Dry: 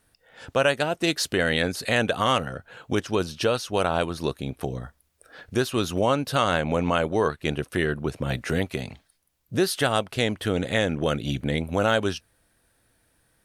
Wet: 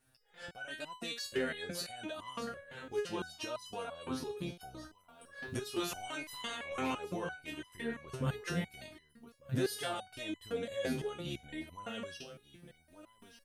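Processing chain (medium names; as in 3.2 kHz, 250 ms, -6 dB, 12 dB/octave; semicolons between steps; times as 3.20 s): 5.79–6.92 s: spectral peaks clipped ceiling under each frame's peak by 21 dB; recorder AGC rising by 6.3 dB/s; peak limiter -17 dBFS, peak gain reduction 11.5 dB; delay 1190 ms -15 dB; resonator arpeggio 5.9 Hz 130–1000 Hz; trim +4 dB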